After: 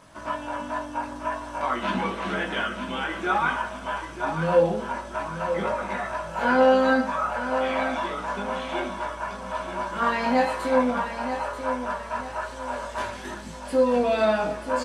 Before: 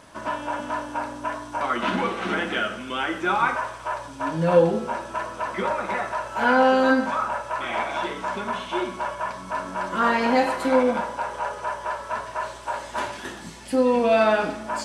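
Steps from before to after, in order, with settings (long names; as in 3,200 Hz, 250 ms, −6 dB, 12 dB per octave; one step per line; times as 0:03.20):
multi-voice chorus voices 6, 0.55 Hz, delay 20 ms, depth 1 ms
on a send: repeating echo 936 ms, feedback 37%, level −9 dB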